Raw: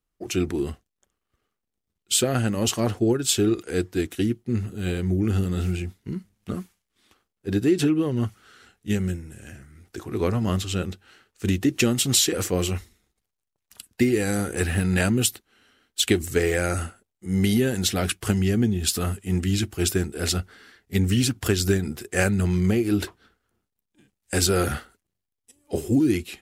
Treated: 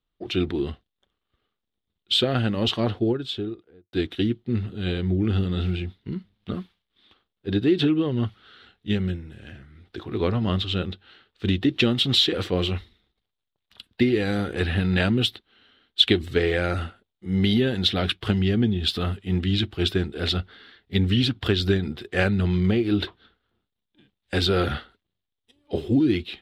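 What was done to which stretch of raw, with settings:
2.73–3.93 studio fade out
whole clip: EQ curve 2500 Hz 0 dB, 3600 Hz +9 dB, 6700 Hz -21 dB

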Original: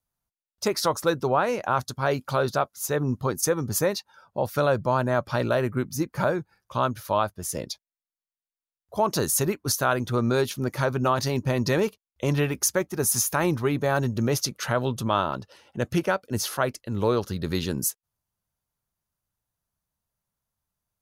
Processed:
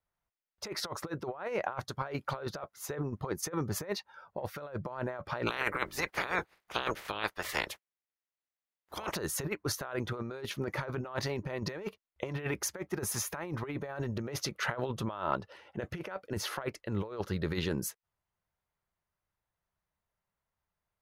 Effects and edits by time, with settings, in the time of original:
5.46–9.14 spectral limiter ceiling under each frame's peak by 30 dB
whole clip: tone controls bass -4 dB, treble -14 dB; negative-ratio compressor -29 dBFS, ratio -0.5; thirty-one-band EQ 125 Hz -5 dB, 250 Hz -8 dB, 2000 Hz +4 dB; gain -3.5 dB

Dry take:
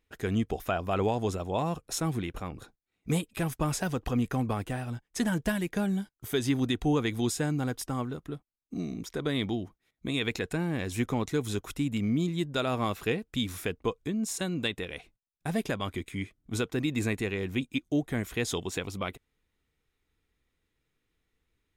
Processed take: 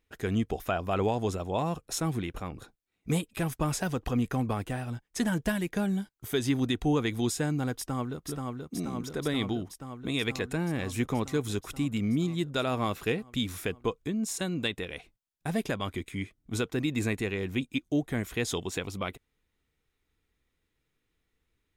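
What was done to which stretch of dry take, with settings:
7.77–8.25 echo throw 0.48 s, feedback 80%, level -3.5 dB

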